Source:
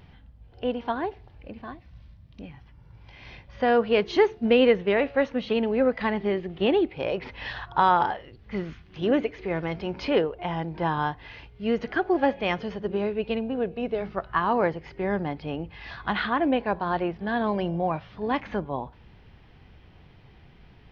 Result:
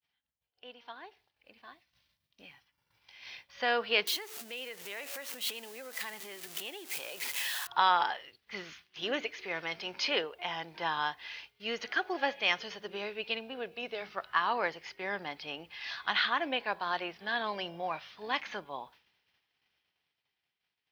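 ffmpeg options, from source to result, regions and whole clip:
-filter_complex "[0:a]asettb=1/sr,asplit=3[a][b][c];[a]atrim=end=4.074[d];[b]atrim=start=4.07:end=7.67,asetpts=PTS-STARTPTS,afade=t=in:d=0.004:c=qsin,afade=t=out:st=3.596:d=0.004:c=qsin,aeval=exprs='val(0)+0.5*0.0158*sgn(val(0))':c=same,acompressor=threshold=-34dB:ratio=4:attack=3.2:release=140:knee=1:detection=peak,highpass=f=130:p=1[e];[c]atrim=start=7.666[f];[d][e]acrossfade=d=0.004:c1=hsin:c2=qsin[g];[g][f]acrossfade=d=0.004:c1=qsin:c2=hsin,agate=range=-33dB:threshold=-42dB:ratio=3:detection=peak,aderivative,dynaudnorm=f=350:g=11:m=13.5dB,volume=-2dB"

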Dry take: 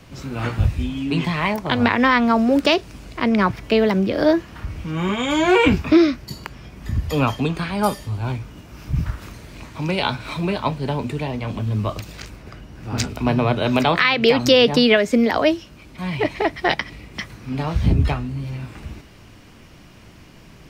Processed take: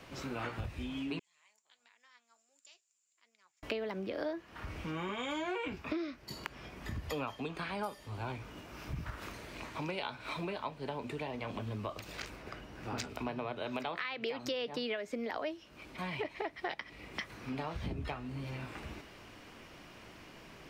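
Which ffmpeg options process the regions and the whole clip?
-filter_complex "[0:a]asettb=1/sr,asplit=3[a][b][c];[a]atrim=end=1.194[d];[b]atrim=start=1.19:end=3.63,asetpts=PTS-STARTPTS,afade=t=in:d=0.004:c=qsin,afade=t=out:st=2.436:d=0.004:c=qsin,bandpass=f=7.2k:t=q:w=19,flanger=delay=4.1:depth=5:regen=65:speed=1.4:shape=sinusoidal[e];[c]atrim=start=3.626[f];[d][e]acrossfade=d=0.004:c1=hsin:c2=qsin[g];[g][f]acrossfade=d=0.004:c1=qsin:c2=hsin,bass=f=250:g=-11,treble=f=4k:g=-5,acompressor=threshold=-33dB:ratio=6,volume=-3dB"

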